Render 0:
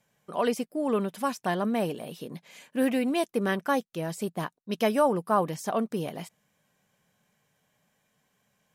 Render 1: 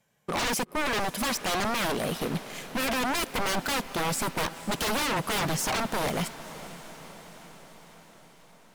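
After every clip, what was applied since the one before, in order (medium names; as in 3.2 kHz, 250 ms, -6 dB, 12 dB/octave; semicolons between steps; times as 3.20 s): waveshaping leveller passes 2; wavefolder -26.5 dBFS; echo that smears into a reverb 502 ms, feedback 64%, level -15 dB; trim +4 dB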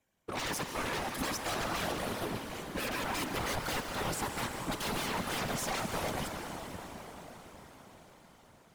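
plate-style reverb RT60 4.8 s, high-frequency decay 0.65×, pre-delay 110 ms, DRR 3.5 dB; whisper effect; trim -8 dB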